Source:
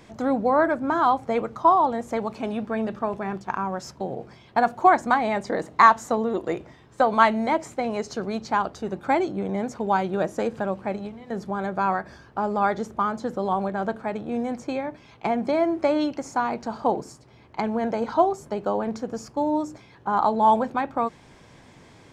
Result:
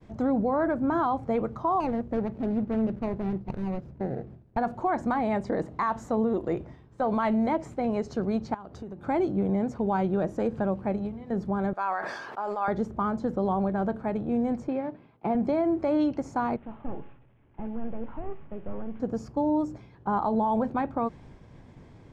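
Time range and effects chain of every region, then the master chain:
1.80–4.57 s: median filter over 41 samples + treble shelf 6.9 kHz -8.5 dB
8.54–9.07 s: high-pass 63 Hz + compression 8:1, threshold -36 dBFS
11.73–12.68 s: high-pass 810 Hz + decay stretcher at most 32 dB/s
14.68–15.35 s: CVSD coder 32 kbps + high-pass 170 Hz + distance through air 380 m
16.56–19.00 s: one-bit delta coder 16 kbps, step -38 dBFS + feedback comb 280 Hz, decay 0.93 s, mix 70%
whole clip: expander -47 dBFS; tilt EQ -3 dB/octave; peak limiter -14 dBFS; trim -4 dB

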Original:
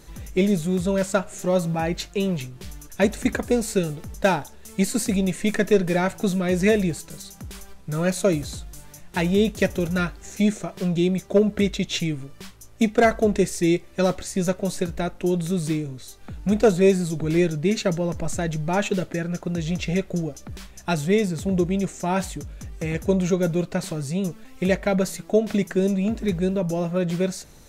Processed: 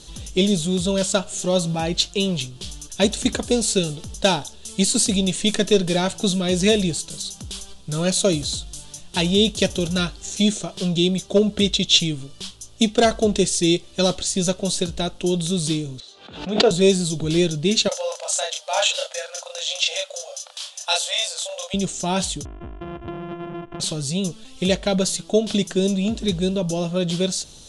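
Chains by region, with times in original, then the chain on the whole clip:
16.00–16.71 s: band-pass 330–2400 Hz + doubling 22 ms -11 dB + swell ahead of each attack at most 93 dB/s
17.88–21.74 s: brick-wall FIR high-pass 490 Hz + hard clipper -14.5 dBFS + doubling 33 ms -2 dB
22.45–23.80 s: sorted samples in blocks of 128 samples + inverse Chebyshev low-pass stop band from 4.1 kHz + compression, threshold -30 dBFS
whole clip: steep low-pass 11 kHz 96 dB/octave; resonant high shelf 2.6 kHz +7.5 dB, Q 3; trim +1 dB

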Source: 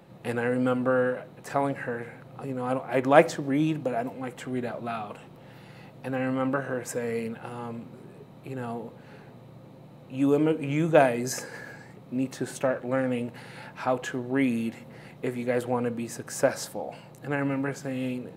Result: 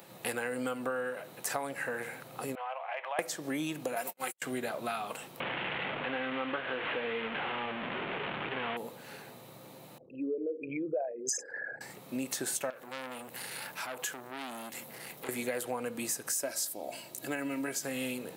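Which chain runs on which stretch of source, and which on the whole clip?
2.55–3.19 s: elliptic band-pass 630–3000 Hz + peaking EQ 1.4 kHz -6.5 dB 0.41 oct + compression 4:1, threshold -36 dBFS
3.96–4.42 s: gate -37 dBFS, range -54 dB + tilt EQ +2.5 dB/octave + comb 5.4 ms
5.40–8.77 s: one-bit delta coder 16 kbps, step -27.5 dBFS + peaking EQ 130 Hz -4.5 dB 0.3 oct
9.98–11.81 s: resonances exaggerated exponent 3 + peaking EQ 160 Hz -9.5 dB 2.2 oct
12.70–15.29 s: treble shelf 11 kHz +10 dB + compression 2.5:1, threshold -39 dBFS + transformer saturation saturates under 1.6 kHz
16.32–17.83 s: peaking EQ 1.2 kHz -7 dB 1.7 oct + comb 3.1 ms, depth 52%
whole clip: RIAA curve recording; compression 6:1, threshold -34 dBFS; trim +2.5 dB

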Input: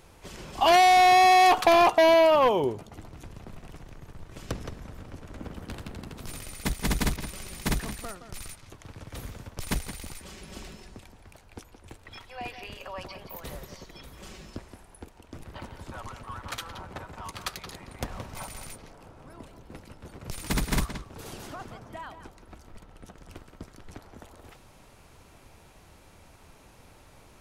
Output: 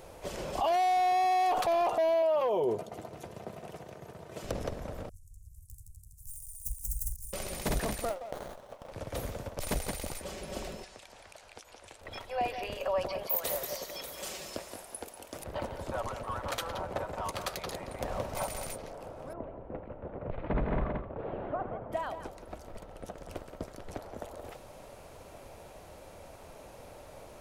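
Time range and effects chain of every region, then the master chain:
2.22–4.44 s: high-pass 130 Hz + comb of notches 280 Hz
5.09–7.33 s: self-modulated delay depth 0.22 ms + inverse Chebyshev band-stop 300–3400 Hz, stop band 50 dB + amplifier tone stack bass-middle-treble 10-0-10
8.09–8.92 s: brick-wall FIR high-pass 470 Hz + sliding maximum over 17 samples
10.84–12.01 s: low-pass 8.2 kHz + tilt shelf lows -9.5 dB, about 820 Hz + compression 2.5:1, threshold -52 dBFS
13.23–15.44 s: tilt EQ +3 dB/octave + feedback delay 192 ms, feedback 42%, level -11 dB
19.33–21.92 s: Gaussian low-pass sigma 4.3 samples + delay 83 ms -12.5 dB
whole clip: peaking EQ 580 Hz +12.5 dB 0.96 oct; peak limiter -22 dBFS; treble shelf 10 kHz +4.5 dB

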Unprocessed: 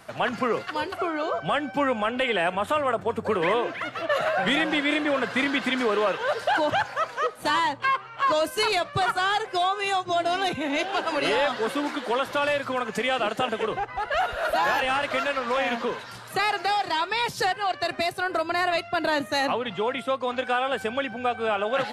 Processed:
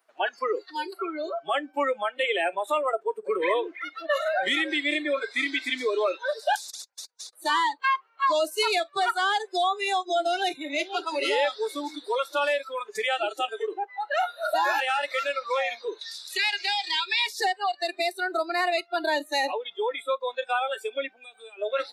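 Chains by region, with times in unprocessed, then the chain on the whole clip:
6.55–7.33 s: gate -27 dBFS, range -49 dB + compression, threshold -29 dBFS + spectrum-flattening compressor 10:1
16.01–17.27 s: frequency weighting D + compression 1.5:1, threshold -31 dBFS
21.22–21.62 s: treble shelf 4.3 kHz +10.5 dB + band-stop 5.5 kHz, Q 7.7 + compression, threshold -29 dBFS
whole clip: high-pass 330 Hz 24 dB/octave; spectral noise reduction 23 dB

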